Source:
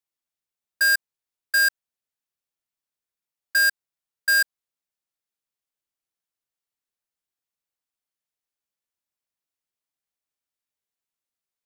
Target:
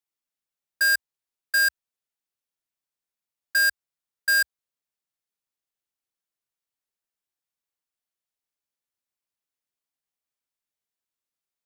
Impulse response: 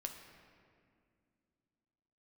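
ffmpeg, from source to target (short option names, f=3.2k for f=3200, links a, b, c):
-af "equalizer=f=64:w=2.9:g=-3,volume=-1.5dB"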